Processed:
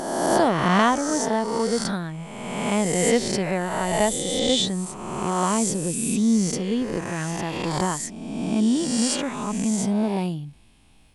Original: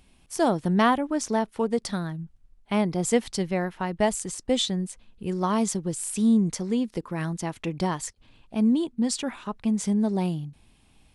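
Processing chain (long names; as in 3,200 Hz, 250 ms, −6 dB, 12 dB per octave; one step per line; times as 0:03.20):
peak hold with a rise ahead of every peak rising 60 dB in 1.60 s
0:07.31–0:07.71: parametric band 8,500 Hz −6.5 dB 0.75 octaves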